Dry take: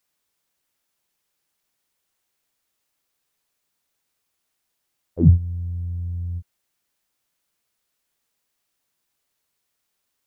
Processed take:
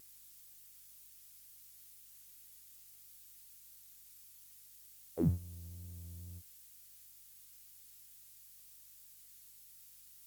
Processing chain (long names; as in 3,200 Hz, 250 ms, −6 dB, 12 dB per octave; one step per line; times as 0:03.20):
first difference
pitch vibrato 2.1 Hz 29 cents
mains hum 50 Hz, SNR 34 dB
level +16.5 dB
Opus 48 kbit/s 48,000 Hz